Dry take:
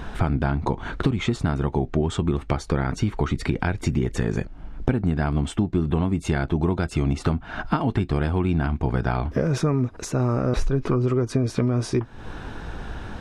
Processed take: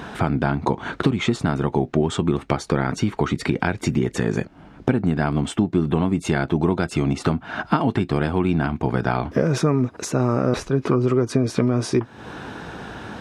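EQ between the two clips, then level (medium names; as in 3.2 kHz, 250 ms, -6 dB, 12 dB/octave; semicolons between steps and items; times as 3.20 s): high-pass 140 Hz 12 dB/octave; +4.0 dB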